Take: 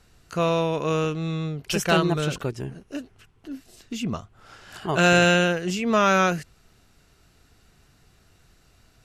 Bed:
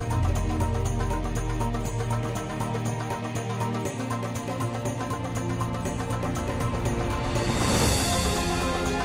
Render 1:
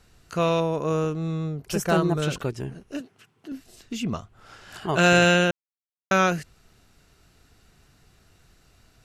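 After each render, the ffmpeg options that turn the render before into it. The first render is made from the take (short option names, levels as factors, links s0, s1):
-filter_complex "[0:a]asettb=1/sr,asplit=3[s0][s1][s2];[s0]atrim=end=0.604[s3];[s1]atrim=start=0.6:end=2.22,asetpts=PTS-STARTPTS,afade=t=in:d=0.004:c=qsin,afade=t=out:st=1.616:d=0.004:c=qsin,equalizer=f=3000:w=0.86:g=-10[s4];[s2]atrim=start=2.216[s5];[s3][s4]acrossfade=d=0.004:c1=hsin:c2=qsin[s6];[s6][s5]acrossfade=d=0.004:c1=qsin:c2=hsin,asettb=1/sr,asplit=3[s7][s8][s9];[s7]atrim=end=3.004[s10];[s8]atrim=start=3:end=3.52,asetpts=PTS-STARTPTS,afade=t=in:d=0.004:c=qsin,afade=t=out:st=0.516:d=0.004:c=qsin,highpass=f=130:w=0.5412,highpass=f=130:w=1.3066[s11];[s9]atrim=start=3.516[s12];[s10][s11]acrossfade=d=0.004:c1=hsin:c2=qsin[s13];[s13][s12]acrossfade=d=0.004:c1=qsin:c2=hsin,asplit=3[s14][s15][s16];[s14]atrim=end=5.51,asetpts=PTS-STARTPTS,afade=t=out:st=5.506:d=0.004:c=hsin[s17];[s15]atrim=start=5.51:end=6.11,asetpts=PTS-STARTPTS,volume=0[s18];[s16]atrim=start=6.11,asetpts=PTS-STARTPTS,afade=t=in:d=0.004:c=hsin[s19];[s17][s18][s19]concat=n=3:v=0:a=1"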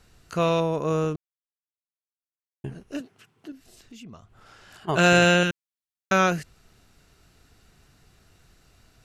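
-filter_complex "[0:a]asplit=3[s0][s1][s2];[s0]afade=t=out:st=3.5:d=0.02[s3];[s1]acompressor=threshold=0.00355:ratio=2.5:attack=3.2:release=140:knee=1:detection=peak,afade=t=in:st=3.5:d=0.02,afade=t=out:st=4.87:d=0.02[s4];[s2]afade=t=in:st=4.87:d=0.02[s5];[s3][s4][s5]amix=inputs=3:normalize=0,asettb=1/sr,asplit=3[s6][s7][s8];[s6]atrim=end=5.434[s9];[s7]atrim=start=5.43:end=6.12,asetpts=PTS-STARTPTS,afade=t=in:d=0.004:c=qsin,afade=t=out:st=0.686:d=0.004:c=qsin,equalizer=f=650:w=1.5:g=-14.5[s10];[s8]atrim=start=6.116[s11];[s9][s10]acrossfade=d=0.004:c1=hsin:c2=qsin[s12];[s12][s11]acrossfade=d=0.004:c1=qsin:c2=hsin,asplit=3[s13][s14][s15];[s13]atrim=end=1.16,asetpts=PTS-STARTPTS,afade=t=out:st=1.156:d=0.004:c=hsin[s16];[s14]atrim=start=1.16:end=2.64,asetpts=PTS-STARTPTS,volume=0[s17];[s15]atrim=start=2.64,asetpts=PTS-STARTPTS,afade=t=in:d=0.004:c=hsin[s18];[s16][s17][s18]concat=n=3:v=0:a=1"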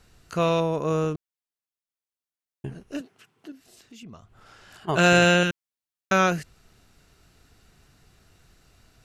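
-filter_complex "[0:a]asettb=1/sr,asplit=3[s0][s1][s2];[s0]atrim=end=3.014[s3];[s1]atrim=start=3.01:end=4.03,asetpts=PTS-STARTPTS,afade=t=in:d=0.004:c=qsin,afade=t=out:st=1.016:d=0.004:c=qsin,highpass=f=190:p=1[s4];[s2]atrim=start=4.026[s5];[s3][s4]acrossfade=d=0.004:c1=hsin:c2=qsin[s6];[s6][s5]acrossfade=d=0.004:c1=qsin:c2=hsin"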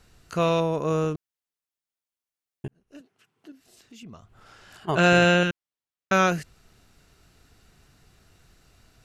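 -filter_complex "[0:a]asettb=1/sr,asplit=3[s0][s1][s2];[s0]atrim=end=4.954[s3];[s1]atrim=start=4.95:end=6.13,asetpts=PTS-STARTPTS,afade=t=in:d=0.004:c=qsin,afade=t=out:st=1.176:d=0.004:c=qsin,lowpass=f=3900:p=1[s4];[s2]atrim=start=6.126[s5];[s3][s4]acrossfade=d=0.004:c1=hsin:c2=qsin[s6];[s6][s5]acrossfade=d=0.004:c1=qsin:c2=hsin,asplit=2[s7][s8];[s7]atrim=end=2.68,asetpts=PTS-STARTPTS,afade=t=out:st=2.676:d=0.004:c=hsin[s9];[s8]atrim=start=2.68,asetpts=PTS-STARTPTS,afade=t=in:d=1.39[s10];[s9][s10]concat=n=2:v=0:a=1"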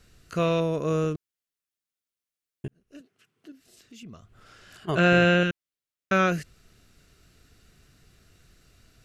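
-filter_complex "[0:a]equalizer=f=870:t=o:w=0.54:g=-9.5,acrossover=split=3300[s0][s1];[s1]acompressor=threshold=0.00891:ratio=4:attack=1:release=60[s2];[s0][s2]amix=inputs=2:normalize=0"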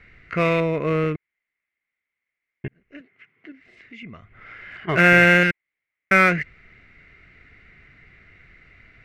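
-filter_complex "[0:a]lowpass=f=2100:t=q:w=13,asplit=2[s0][s1];[s1]volume=12.6,asoftclip=hard,volume=0.0794,volume=0.531[s2];[s0][s2]amix=inputs=2:normalize=0"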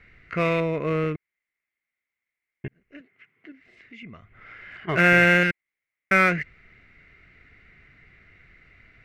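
-af "volume=0.708"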